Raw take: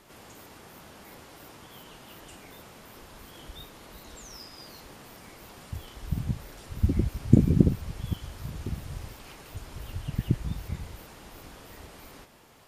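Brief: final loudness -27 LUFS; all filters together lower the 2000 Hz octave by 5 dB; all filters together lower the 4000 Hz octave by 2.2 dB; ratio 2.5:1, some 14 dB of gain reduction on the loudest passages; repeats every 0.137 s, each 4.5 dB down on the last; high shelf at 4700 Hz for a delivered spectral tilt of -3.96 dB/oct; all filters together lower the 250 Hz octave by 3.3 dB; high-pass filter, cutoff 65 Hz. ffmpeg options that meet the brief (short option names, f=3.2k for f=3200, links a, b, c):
-af "highpass=65,equalizer=f=250:t=o:g=-4.5,equalizer=f=2k:t=o:g=-6.5,equalizer=f=4k:t=o:g=-6,highshelf=f=4.7k:g=9,acompressor=threshold=-36dB:ratio=2.5,aecho=1:1:137|274|411|548|685|822|959|1096|1233:0.596|0.357|0.214|0.129|0.0772|0.0463|0.0278|0.0167|0.01,volume=14dB"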